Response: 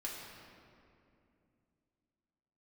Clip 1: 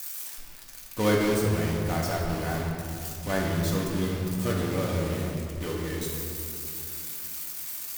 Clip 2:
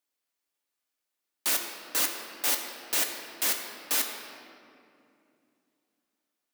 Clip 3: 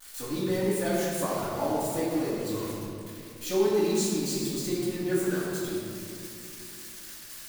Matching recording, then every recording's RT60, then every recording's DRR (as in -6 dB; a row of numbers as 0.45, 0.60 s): 1; 2.6, 2.6, 2.6 s; -4.0, 2.0, -14.0 dB